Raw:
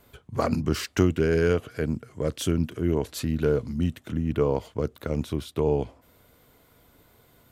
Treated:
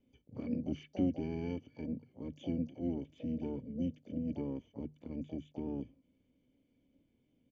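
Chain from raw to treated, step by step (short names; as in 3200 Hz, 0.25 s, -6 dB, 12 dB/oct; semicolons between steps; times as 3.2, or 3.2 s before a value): vocal tract filter i; harmoniser -5 st -13 dB, +12 st -13 dB; notches 50/100/150 Hz; gain -5 dB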